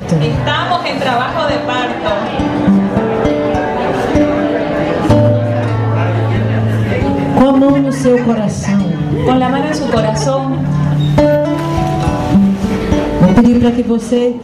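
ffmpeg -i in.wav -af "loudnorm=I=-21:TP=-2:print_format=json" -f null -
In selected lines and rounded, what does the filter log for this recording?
"input_i" : "-12.8",
"input_tp" : "-2.3",
"input_lra" : "1.8",
"input_thresh" : "-22.8",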